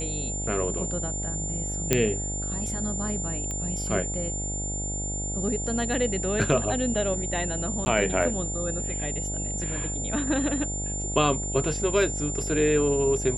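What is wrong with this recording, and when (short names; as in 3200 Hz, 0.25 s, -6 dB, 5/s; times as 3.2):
buzz 50 Hz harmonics 17 -33 dBFS
tone 7200 Hz -31 dBFS
1.93 pop -5 dBFS
3.51 pop -20 dBFS
7.85–7.86 gap 10 ms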